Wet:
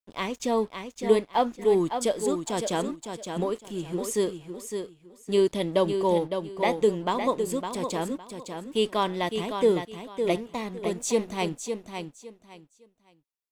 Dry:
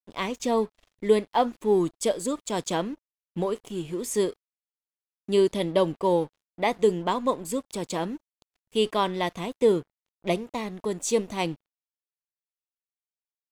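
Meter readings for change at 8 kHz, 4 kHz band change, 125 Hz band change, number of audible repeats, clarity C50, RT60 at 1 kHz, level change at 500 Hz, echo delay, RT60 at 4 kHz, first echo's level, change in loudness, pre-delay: 0.0 dB, 0.0 dB, -0.5 dB, 3, none, none, 0.0 dB, 0.559 s, none, -7.0 dB, -0.5 dB, none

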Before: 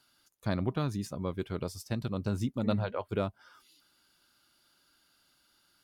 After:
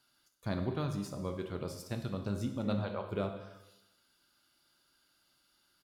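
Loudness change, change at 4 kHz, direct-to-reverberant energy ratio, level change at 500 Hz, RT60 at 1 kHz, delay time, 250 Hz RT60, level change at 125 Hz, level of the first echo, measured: -3.5 dB, -3.0 dB, 5.0 dB, -3.0 dB, 0.90 s, 0.202 s, 0.90 s, -3.5 dB, -18.5 dB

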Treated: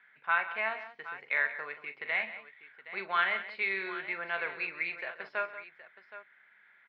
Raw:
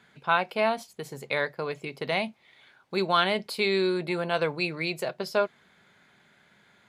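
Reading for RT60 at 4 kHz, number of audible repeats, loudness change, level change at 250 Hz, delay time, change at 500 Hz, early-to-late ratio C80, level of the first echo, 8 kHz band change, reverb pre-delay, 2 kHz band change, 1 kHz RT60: none, 4, -5.0 dB, -19.5 dB, 41 ms, -14.5 dB, none, -11.0 dB, under -30 dB, none, +0.5 dB, none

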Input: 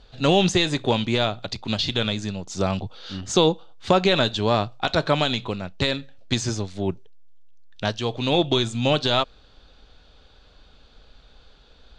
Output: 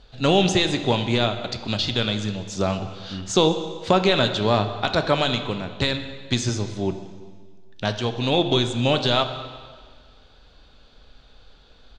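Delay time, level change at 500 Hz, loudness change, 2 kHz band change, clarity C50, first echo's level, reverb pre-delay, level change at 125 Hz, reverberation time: 0.192 s, +0.5 dB, +0.5 dB, +0.5 dB, 9.5 dB, -22.0 dB, 5 ms, +1.0 dB, 1.7 s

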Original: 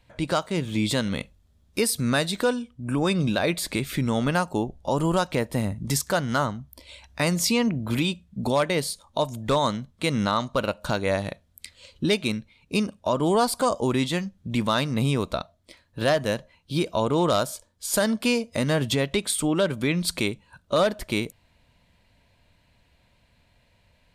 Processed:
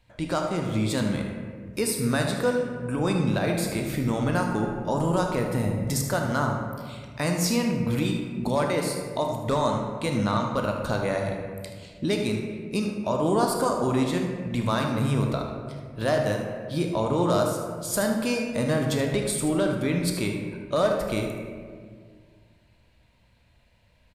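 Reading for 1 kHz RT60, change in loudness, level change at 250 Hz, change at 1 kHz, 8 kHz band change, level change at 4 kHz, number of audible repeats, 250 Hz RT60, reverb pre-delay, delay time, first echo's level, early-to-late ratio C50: 1.6 s, -1.0 dB, 0.0 dB, -1.0 dB, -2.5 dB, -5.5 dB, 1, 2.4 s, 14 ms, 77 ms, -10.0 dB, 2.5 dB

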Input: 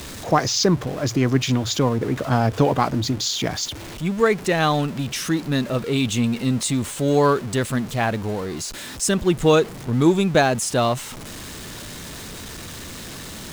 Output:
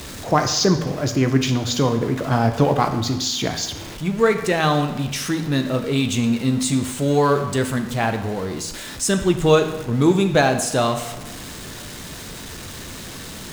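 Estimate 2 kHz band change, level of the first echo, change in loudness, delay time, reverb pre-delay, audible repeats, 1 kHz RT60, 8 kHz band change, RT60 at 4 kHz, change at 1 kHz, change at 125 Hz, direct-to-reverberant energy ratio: +1.0 dB, none, +1.0 dB, none, 12 ms, none, 0.95 s, +0.5 dB, 0.90 s, +1.0 dB, +1.0 dB, 6.5 dB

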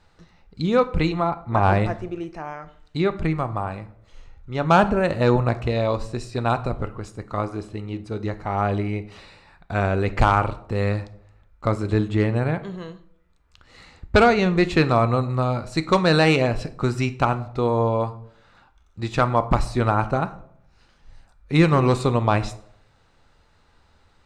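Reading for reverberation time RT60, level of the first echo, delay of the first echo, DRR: 0.65 s, none, none, 11.0 dB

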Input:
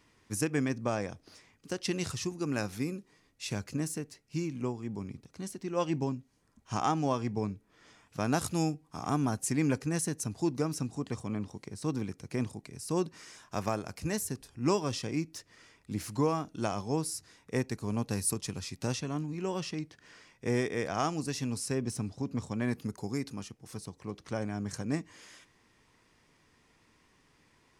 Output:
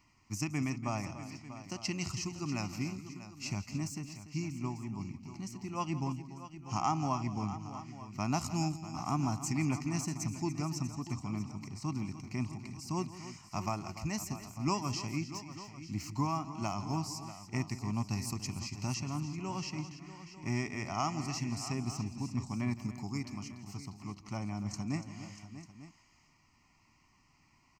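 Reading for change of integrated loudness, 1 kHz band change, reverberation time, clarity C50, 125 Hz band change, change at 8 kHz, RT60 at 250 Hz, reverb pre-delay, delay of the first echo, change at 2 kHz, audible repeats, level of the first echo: -3.0 dB, -1.0 dB, none, none, -0.5 dB, -3.5 dB, none, none, 0.167 s, -3.5 dB, 4, -16.0 dB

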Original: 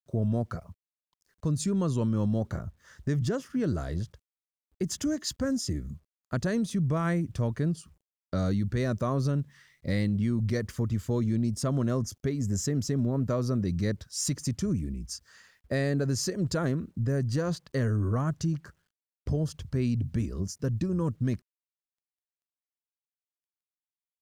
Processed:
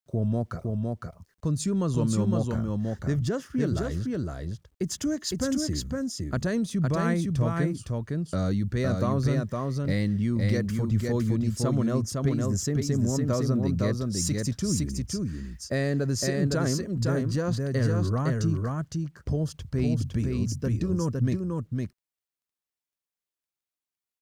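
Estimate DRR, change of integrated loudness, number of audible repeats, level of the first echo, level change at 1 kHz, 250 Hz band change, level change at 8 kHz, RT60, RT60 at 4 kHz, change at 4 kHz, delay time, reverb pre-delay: none, +2.0 dB, 1, -3.0 dB, +2.5 dB, +2.5 dB, +3.0 dB, none, none, +3.0 dB, 0.51 s, none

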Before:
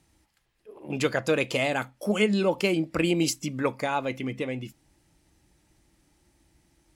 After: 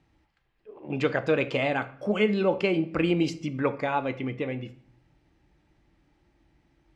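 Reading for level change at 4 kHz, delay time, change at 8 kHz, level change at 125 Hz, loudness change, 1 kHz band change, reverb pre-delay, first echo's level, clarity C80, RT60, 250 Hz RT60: -4.5 dB, none, under -15 dB, +0.5 dB, 0.0 dB, +0.5 dB, 3 ms, none, 19.5 dB, 0.60 s, 0.65 s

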